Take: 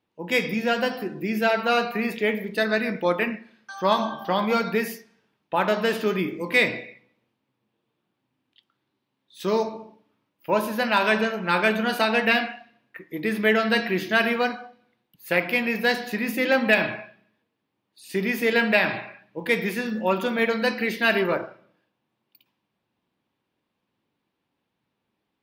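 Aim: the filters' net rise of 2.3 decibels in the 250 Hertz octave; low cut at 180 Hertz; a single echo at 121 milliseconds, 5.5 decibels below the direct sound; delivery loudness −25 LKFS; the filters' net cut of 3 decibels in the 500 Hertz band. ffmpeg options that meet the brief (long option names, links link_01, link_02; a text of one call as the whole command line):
ffmpeg -i in.wav -af "highpass=180,equalizer=frequency=250:width_type=o:gain=5.5,equalizer=frequency=500:width_type=o:gain=-5,aecho=1:1:121:0.531,volume=-2dB" out.wav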